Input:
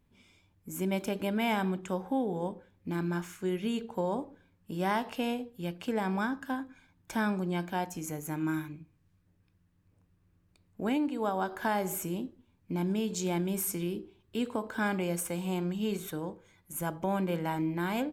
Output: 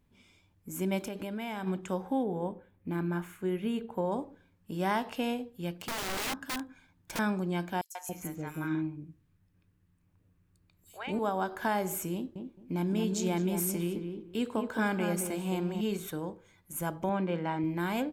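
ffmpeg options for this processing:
ffmpeg -i in.wav -filter_complex "[0:a]asplit=3[link_01][link_02][link_03];[link_01]afade=type=out:start_time=1.06:duration=0.02[link_04];[link_02]acompressor=threshold=-34dB:ratio=4:attack=3.2:release=140:knee=1:detection=peak,afade=type=in:start_time=1.06:duration=0.02,afade=type=out:start_time=1.66:duration=0.02[link_05];[link_03]afade=type=in:start_time=1.66:duration=0.02[link_06];[link_04][link_05][link_06]amix=inputs=3:normalize=0,asettb=1/sr,asplit=3[link_07][link_08][link_09];[link_07]atrim=end=2.234[link_10];[link_08]atrim=start=2.23:end=4.12,asetpts=PTS-STARTPTS,afade=type=in:duration=0.004:curve=qsin,afade=type=out:start_time=1.886:duration=0.004:curve=qsin,equalizer=frequency=5600:width_type=o:width=1.1:gain=-13.5[link_11];[link_09]atrim=start=4.116[link_12];[link_10][link_11]acrossfade=duration=0.004:curve1=hsin:curve2=qsin[link_13];[link_13][link_12]acrossfade=duration=0.004:curve1=qsin:curve2=hsin,asettb=1/sr,asplit=3[link_14][link_15][link_16];[link_14]atrim=end=5.724[link_17];[link_15]atrim=start=5.72:end=7.19,asetpts=PTS-STARTPTS,afade=type=in:duration=0.004:curve=qsin,afade=type=out:start_time=1.466:duration=0.004:curve=qsin,aeval=exprs='(mod(29.9*val(0)+1,2)-1)/29.9':channel_layout=same[link_18];[link_16]atrim=start=7.186[link_19];[link_17][link_18]acrossfade=duration=0.004:curve1=hsin:curve2=qsin[link_20];[link_20][link_19]acrossfade=duration=0.004:curve1=qsin:curve2=hsin,asettb=1/sr,asplit=3[link_21][link_22][link_23];[link_21]atrim=end=7.814[link_24];[link_22]atrim=start=7.81:end=11.19,asetpts=PTS-STARTPTS,afade=type=in:duration=0.004:curve=qsin,afade=type=out:start_time=3.376:duration=0.004:curve=qsin,acrossover=split=680|5200[link_25][link_26][link_27];[link_26]adelay=140[link_28];[link_25]adelay=280[link_29];[link_29][link_28][link_27]amix=inputs=3:normalize=0,atrim=end_sample=149058[link_30];[link_23]atrim=start=11.186[link_31];[link_24][link_30]acrossfade=duration=0.004:curve1=hsin:curve2=qsin[link_32];[link_32][link_31]acrossfade=duration=0.004:curve1=qsin:curve2=hsin,asettb=1/sr,asplit=3[link_33][link_34][link_35];[link_33]atrim=end=12.144[link_36];[link_34]atrim=start=12.14:end=15.81,asetpts=PTS-STARTPTS,afade=type=in:duration=0.004:curve=qsin,afade=type=out:start_time=3.666:duration=0.004:curve=qsin,asplit=2[link_37][link_38];[link_38]adelay=215,lowpass=frequency=1300:poles=1,volume=-5dB,asplit=2[link_39][link_40];[link_40]adelay=215,lowpass=frequency=1300:poles=1,volume=0.21,asplit=2[link_41][link_42];[link_42]adelay=215,lowpass=frequency=1300:poles=1,volume=0.21[link_43];[link_37][link_39][link_41][link_43]amix=inputs=4:normalize=0,atrim=end_sample=161847[link_44];[link_35]atrim=start=15.806[link_45];[link_36][link_44]acrossfade=duration=0.004:curve1=hsin:curve2=qsin[link_46];[link_46][link_45]acrossfade=duration=0.004:curve1=qsin:curve2=hsin,asettb=1/sr,asplit=3[link_47][link_48][link_49];[link_47]atrim=end=17.094[link_50];[link_48]atrim=start=17.09:end=17.64,asetpts=PTS-STARTPTS,afade=type=in:duration=0.004:curve=qsin,afade=type=out:start_time=0.546:duration=0.004:curve=qsin,highpass=120,lowpass=3700[link_51];[link_49]atrim=start=17.636[link_52];[link_50][link_51]acrossfade=duration=0.004:curve1=hsin:curve2=qsin[link_53];[link_53][link_52]acrossfade=duration=0.004:curve1=qsin:curve2=hsin" out.wav

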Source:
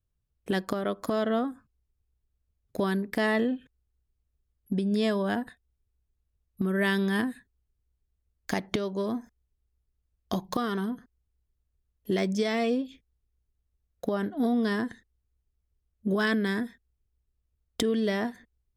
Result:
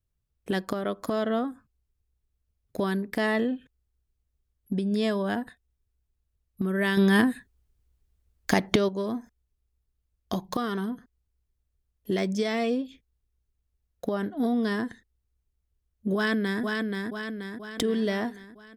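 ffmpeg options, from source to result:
ffmpeg -i in.wav -filter_complex "[0:a]asettb=1/sr,asplit=3[link_01][link_02][link_03];[link_01]atrim=end=6.974[link_04];[link_02]atrim=start=6.97:end=8.89,asetpts=PTS-STARTPTS,afade=type=in:duration=0.004:curve=qsin,afade=type=out:start_time=1.916:duration=0.004:curve=qsin,acontrast=77[link_05];[link_03]atrim=start=8.886[link_06];[link_04][link_05]acrossfade=duration=0.004:curve1=hsin:curve2=qsin[link_07];[link_07][link_06]acrossfade=duration=0.004:curve1=qsin:curve2=hsin,asplit=2[link_08][link_09];[link_09]afade=type=in:start_time=16.15:duration=0.01,afade=type=out:start_time=16.62:duration=0.01,aecho=0:1:480|960|1440|1920|2400|2880|3360|3840:0.668344|0.367589|0.202174|0.111196|0.0611576|0.0336367|0.0185002|0.0101751[link_10];[link_08][link_10]amix=inputs=2:normalize=0" out.wav

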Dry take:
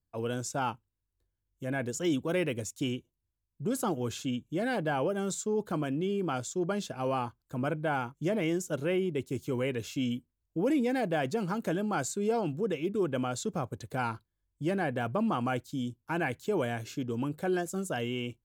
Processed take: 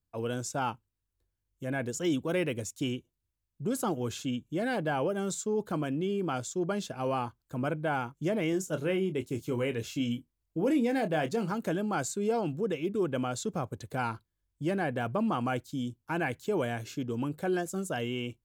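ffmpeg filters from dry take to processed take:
ffmpeg -i in.wav -filter_complex "[0:a]asettb=1/sr,asplit=3[link_01][link_02][link_03];[link_01]atrim=end=8.504[link_04];[link_02]atrim=start=8.5:end=11.52,asetpts=PTS-STARTPTS,afade=type=in:duration=0.004:curve=qsin,afade=type=out:start_time=3.016:duration=0.004:curve=qsin,asplit=2[link_05][link_06];[link_06]adelay=26,volume=-10dB[link_07];[link_05][link_07]amix=inputs=2:normalize=0,atrim=end_sample=133182[link_08];[link_03]atrim=start=11.516[link_09];[link_04][link_08]acrossfade=duration=0.004:curve1=hsin:curve2=qsin[link_10];[link_10][link_09]acrossfade=duration=0.004:curve1=qsin:curve2=hsin" out.wav

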